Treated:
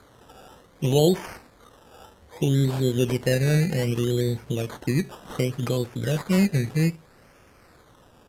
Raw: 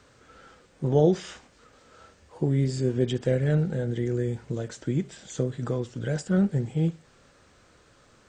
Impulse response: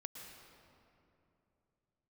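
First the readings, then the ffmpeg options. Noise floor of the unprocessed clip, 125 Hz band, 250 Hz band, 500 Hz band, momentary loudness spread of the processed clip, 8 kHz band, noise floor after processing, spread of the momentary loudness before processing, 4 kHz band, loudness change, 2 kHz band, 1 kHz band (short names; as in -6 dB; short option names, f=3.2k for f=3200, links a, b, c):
-59 dBFS, +3.0 dB, +2.5 dB, +2.0 dB, 8 LU, +7.5 dB, -55 dBFS, 9 LU, +9.5 dB, +3.0 dB, +7.5 dB, +3.5 dB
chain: -filter_complex "[0:a]asplit=2[a][b];[b]alimiter=limit=-19dB:level=0:latency=1:release=69,volume=-2dB[c];[a][c]amix=inputs=2:normalize=0,acrusher=samples=16:mix=1:aa=0.000001:lfo=1:lforange=9.6:lforate=0.64,aresample=32000,aresample=44100,volume=-1dB"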